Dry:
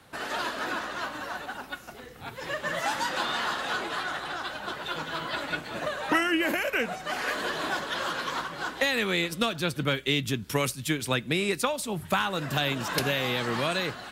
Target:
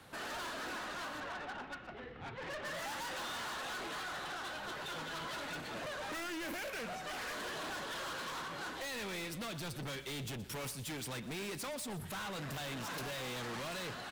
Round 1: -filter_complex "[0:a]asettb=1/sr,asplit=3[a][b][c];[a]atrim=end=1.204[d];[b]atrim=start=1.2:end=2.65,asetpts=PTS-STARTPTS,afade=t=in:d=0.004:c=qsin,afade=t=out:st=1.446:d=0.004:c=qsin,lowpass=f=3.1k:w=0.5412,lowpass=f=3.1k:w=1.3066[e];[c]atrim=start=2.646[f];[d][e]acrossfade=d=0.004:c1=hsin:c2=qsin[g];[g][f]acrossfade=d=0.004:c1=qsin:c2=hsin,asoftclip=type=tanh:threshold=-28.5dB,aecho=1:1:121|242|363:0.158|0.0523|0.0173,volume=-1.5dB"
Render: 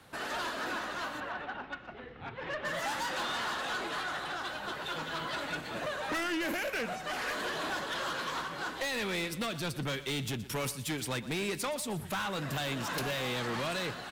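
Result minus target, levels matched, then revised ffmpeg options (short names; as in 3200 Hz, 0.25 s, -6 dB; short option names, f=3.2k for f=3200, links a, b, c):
soft clip: distortion -5 dB
-filter_complex "[0:a]asettb=1/sr,asplit=3[a][b][c];[a]atrim=end=1.204[d];[b]atrim=start=1.2:end=2.65,asetpts=PTS-STARTPTS,afade=t=in:d=0.004:c=qsin,afade=t=out:st=1.446:d=0.004:c=qsin,lowpass=f=3.1k:w=0.5412,lowpass=f=3.1k:w=1.3066[e];[c]atrim=start=2.646[f];[d][e]acrossfade=d=0.004:c1=hsin:c2=qsin[g];[g][f]acrossfade=d=0.004:c1=qsin:c2=hsin,asoftclip=type=tanh:threshold=-38.5dB,aecho=1:1:121|242|363:0.158|0.0523|0.0173,volume=-1.5dB"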